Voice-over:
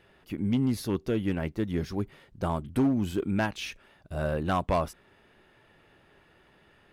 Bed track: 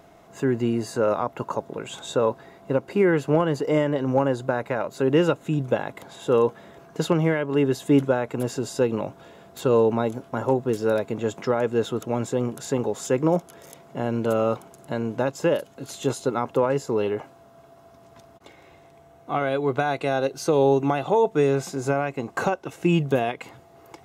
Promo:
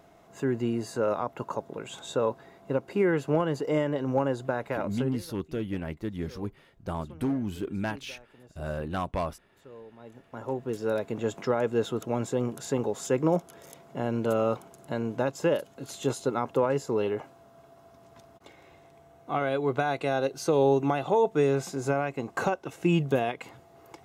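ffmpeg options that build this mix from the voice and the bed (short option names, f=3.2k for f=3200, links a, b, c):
-filter_complex "[0:a]adelay=4450,volume=-4dB[a];[1:a]volume=20dB,afade=t=out:st=4.94:d=0.23:silence=0.0668344,afade=t=in:st=9.98:d=1.27:silence=0.0562341[b];[a][b]amix=inputs=2:normalize=0"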